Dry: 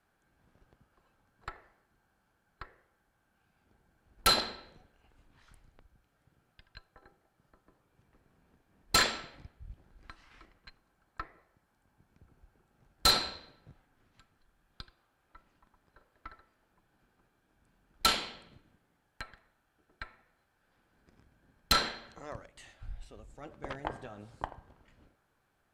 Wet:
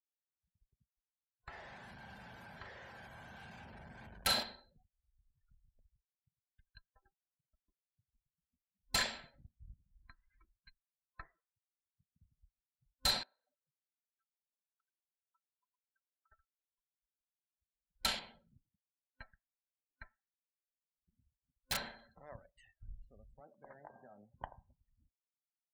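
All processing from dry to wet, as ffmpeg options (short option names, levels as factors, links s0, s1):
-filter_complex "[0:a]asettb=1/sr,asplit=3[s0][s1][s2];[s0]atrim=end=1.494[s3];[s1]atrim=start=1.49:end=4.43,asetpts=PTS-STARTPTS,afade=t=in:d=0.004:c=qsin,afade=t=out:st=2.936:d=0.004:c=qsin,aeval=exprs='val(0)+0.5*0.0119*sgn(val(0))':c=same,highpass=65,asplit=2[s4][s5];[s5]adelay=41,volume=0.501[s6];[s4][s6]amix=inputs=2:normalize=0,atrim=end_sample=129654[s7];[s2]atrim=start=4.426[s8];[s3][s7]acrossfade=d=0.004:c1=hsin:c2=qsin[s9];[s9][s8]acrossfade=d=0.004:c1=qsin:c2=hsin,asettb=1/sr,asplit=3[s10][s11][s12];[s10]atrim=end=13.234[s13];[s11]atrim=start=13.23:end=16.32,asetpts=PTS-STARTPTS,afade=t=in:d=0.004:c=qsin,afade=t=out:st=3.086:d=0.004:c=qsin,aemphasis=mode=reproduction:type=50fm,acompressor=threshold=0.00178:ratio=10:attack=3.2:release=140:knee=1:detection=peak,highpass=260,lowpass=2500[s14];[s12]atrim=start=16.316[s15];[s13][s14]acrossfade=d=0.004:c1=hsin:c2=qsin[s16];[s16][s15]acrossfade=d=0.004:c1=qsin:c2=hsin,asettb=1/sr,asplit=3[s17][s18][s19];[s17]atrim=end=18.194[s20];[s18]atrim=start=18.19:end=21.99,asetpts=PTS-STARTPTS,afade=t=in:d=0.004:c=qsin,afade=t=out:st=3.796:d=0.004:c=qsin,highshelf=f=3500:g=-11.5,aeval=exprs='(mod(11.2*val(0)+1,2)-1)/11.2':c=same[s21];[s19]atrim=start=21.986[s22];[s20][s21]acrossfade=d=0.004:c1=hsin:c2=qsin[s23];[s23][s22]acrossfade=d=0.004:c1=qsin:c2=hsin,asettb=1/sr,asplit=3[s24][s25][s26];[s24]atrim=end=23.404[s27];[s25]atrim=start=23.4:end=24.34,asetpts=PTS-STARTPTS,afade=t=in:d=0.004:c=qsin,afade=t=out:st=0.936:d=0.004:c=qsin,acrossover=split=170 2300:gain=0.2 1 0.0708[s28][s29][s30];[s28][s29][s30]amix=inputs=3:normalize=0,acompressor=threshold=0.00708:ratio=2.5:attack=3.2:release=140:knee=1:detection=peak[s31];[s26]atrim=start=24.336[s32];[s27][s31]acrossfade=d=0.004:c1=hsin:c2=qsin[s33];[s33][s32]acrossfade=d=0.004:c1=qsin:c2=hsin,afftdn=nr=35:nf=-50,superequalizer=6b=0.355:7b=0.501:10b=0.501,volume=0.422"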